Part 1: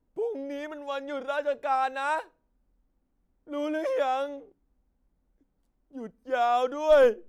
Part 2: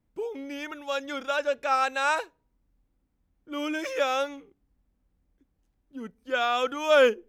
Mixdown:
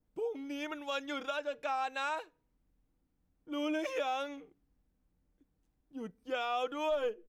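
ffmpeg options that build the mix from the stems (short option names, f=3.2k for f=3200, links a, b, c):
-filter_complex "[0:a]aecho=1:1:6.6:0.8,volume=-11.5dB,asplit=2[a][b];[1:a]adynamicequalizer=threshold=0.00891:dfrequency=2400:dqfactor=0.98:tfrequency=2400:tqfactor=0.98:attack=5:release=100:ratio=0.375:range=2.5:mode=boostabove:tftype=bell,volume=-5.5dB[c];[b]apad=whole_len=321139[d];[c][d]sidechaincompress=threshold=-37dB:ratio=8:attack=6.8:release=390[e];[a][e]amix=inputs=2:normalize=0,alimiter=level_in=1dB:limit=-24dB:level=0:latency=1:release=462,volume=-1dB"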